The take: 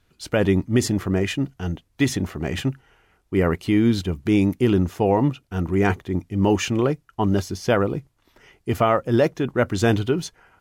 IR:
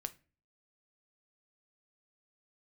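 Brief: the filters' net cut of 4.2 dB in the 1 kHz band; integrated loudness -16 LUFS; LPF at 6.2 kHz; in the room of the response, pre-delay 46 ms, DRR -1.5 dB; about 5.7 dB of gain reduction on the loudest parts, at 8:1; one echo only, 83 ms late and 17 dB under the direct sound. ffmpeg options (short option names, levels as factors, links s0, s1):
-filter_complex "[0:a]lowpass=6200,equalizer=f=1000:t=o:g=-6,acompressor=threshold=0.1:ratio=8,aecho=1:1:83:0.141,asplit=2[s0][s1];[1:a]atrim=start_sample=2205,adelay=46[s2];[s1][s2]afir=irnorm=-1:irlink=0,volume=1.5[s3];[s0][s3]amix=inputs=2:normalize=0,volume=2.24"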